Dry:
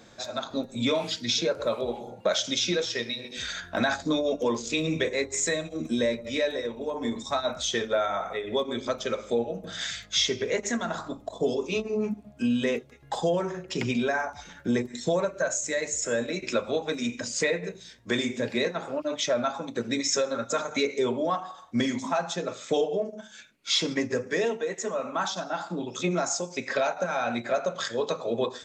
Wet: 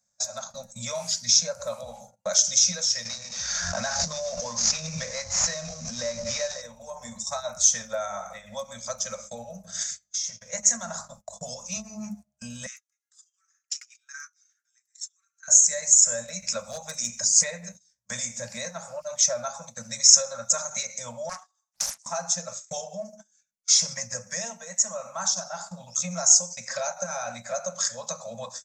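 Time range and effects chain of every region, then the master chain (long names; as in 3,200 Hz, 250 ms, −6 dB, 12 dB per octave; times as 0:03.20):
0:03.05–0:06.62: variable-slope delta modulation 32 kbit/s + background raised ahead of every attack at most 24 dB per second
0:09.83–0:10.53: tuned comb filter 170 Hz, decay 0.84 s, mix 50% + downward compressor, threshold −32 dBFS
0:12.66–0:15.48: downward compressor 3 to 1, threshold −30 dBFS + Butterworth high-pass 1,200 Hz 96 dB per octave
0:16.59–0:17.27: high-shelf EQ 6,800 Hz +4.5 dB + gain into a clipping stage and back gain 20 dB
0:21.29–0:22.06: high-pass filter 1,300 Hz + highs frequency-modulated by the lows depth 0.93 ms
whole clip: noise gate −38 dBFS, range −26 dB; elliptic band-stop filter 210–550 Hz, stop band 40 dB; high shelf with overshoot 4,500 Hz +11.5 dB, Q 3; level −3.5 dB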